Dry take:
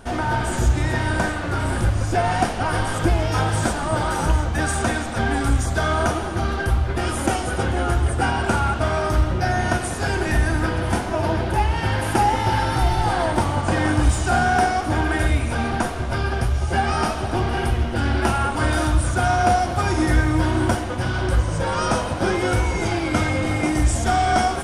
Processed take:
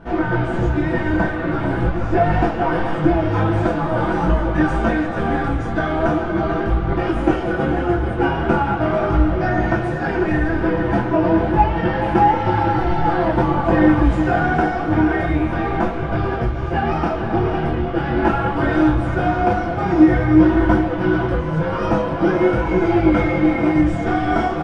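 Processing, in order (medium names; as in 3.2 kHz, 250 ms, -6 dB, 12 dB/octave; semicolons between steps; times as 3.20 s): low-pass 2.2 kHz 12 dB/octave; peaking EQ 290 Hz +5.5 dB 1.6 oct; comb 6 ms, depth 57%; multi-tap echo 435/508 ms -10.5/-12 dB; detune thickener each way 15 cents; trim +3.5 dB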